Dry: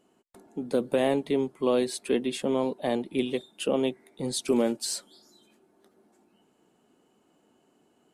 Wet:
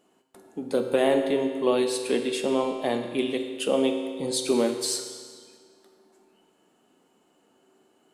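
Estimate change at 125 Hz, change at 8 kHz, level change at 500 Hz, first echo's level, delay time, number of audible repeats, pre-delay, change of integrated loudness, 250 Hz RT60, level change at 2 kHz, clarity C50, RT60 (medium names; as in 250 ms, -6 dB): -2.5 dB, +3.5 dB, +3.0 dB, no echo, no echo, no echo, 8 ms, +2.5 dB, 1.8 s, +4.0 dB, 6.5 dB, 1.8 s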